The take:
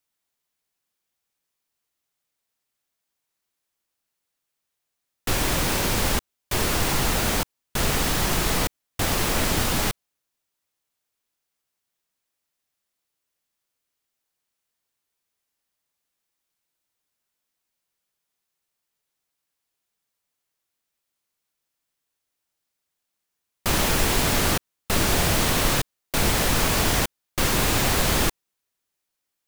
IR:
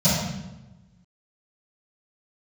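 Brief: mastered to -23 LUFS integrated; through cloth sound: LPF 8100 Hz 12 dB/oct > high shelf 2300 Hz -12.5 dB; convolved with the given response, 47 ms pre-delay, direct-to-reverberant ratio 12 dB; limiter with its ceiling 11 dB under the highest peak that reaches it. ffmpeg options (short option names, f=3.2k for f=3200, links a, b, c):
-filter_complex "[0:a]alimiter=limit=-18.5dB:level=0:latency=1,asplit=2[a][b];[1:a]atrim=start_sample=2205,adelay=47[c];[b][c]afir=irnorm=-1:irlink=0,volume=-29.5dB[d];[a][d]amix=inputs=2:normalize=0,lowpass=8.1k,highshelf=f=2.3k:g=-12.5,volume=8dB"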